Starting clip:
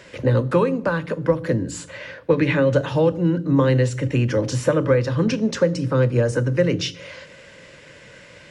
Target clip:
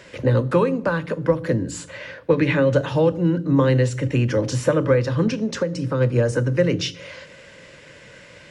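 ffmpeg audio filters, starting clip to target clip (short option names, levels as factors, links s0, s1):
-filter_complex "[0:a]asplit=3[s0][s1][s2];[s0]afade=t=out:st=5.28:d=0.02[s3];[s1]acompressor=threshold=0.1:ratio=3,afade=t=in:st=5.28:d=0.02,afade=t=out:st=6:d=0.02[s4];[s2]afade=t=in:st=6:d=0.02[s5];[s3][s4][s5]amix=inputs=3:normalize=0"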